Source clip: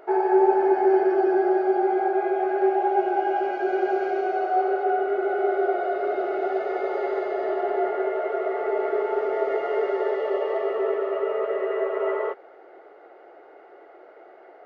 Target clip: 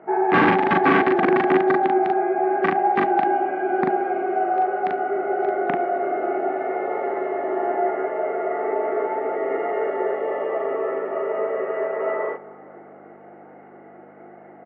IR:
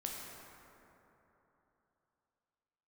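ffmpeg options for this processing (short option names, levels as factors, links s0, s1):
-filter_complex "[0:a]equalizer=f=350:w=7.1:g=3.5,aeval=exprs='(mod(3.98*val(0)+1,2)-1)/3.98':c=same,aeval=exprs='val(0)+0.00158*(sin(2*PI*50*n/s)+sin(2*PI*2*50*n/s)/2+sin(2*PI*3*50*n/s)/3+sin(2*PI*4*50*n/s)/4+sin(2*PI*5*50*n/s)/5)':c=same,highpass=f=170:w=0.5412,highpass=f=170:w=1.3066,equalizer=f=180:t=q:w=4:g=7,equalizer=f=270:t=q:w=4:g=7,equalizer=f=400:t=q:w=4:g=-9,equalizer=f=590:t=q:w=4:g=-6,equalizer=f=990:t=q:w=4:g=-3,equalizer=f=1400:t=q:w=4:g=-6,lowpass=f=2100:w=0.5412,lowpass=f=2100:w=1.3066,asplit=2[s0][s1];[s1]adelay=40,volume=0.794[s2];[s0][s2]amix=inputs=2:normalize=0,aecho=1:1:72:0.0841,asplit=2[s3][s4];[1:a]atrim=start_sample=2205,lowpass=2400[s5];[s4][s5]afir=irnorm=-1:irlink=0,volume=0.188[s6];[s3][s6]amix=inputs=2:normalize=0,volume=1.5" -ar 32000 -c:a aac -b:a 64k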